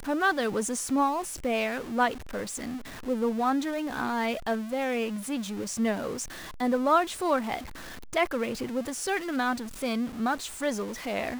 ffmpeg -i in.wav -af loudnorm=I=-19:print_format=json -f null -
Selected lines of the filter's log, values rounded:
"input_i" : "-29.4",
"input_tp" : "-11.3",
"input_lra" : "1.9",
"input_thresh" : "-39.5",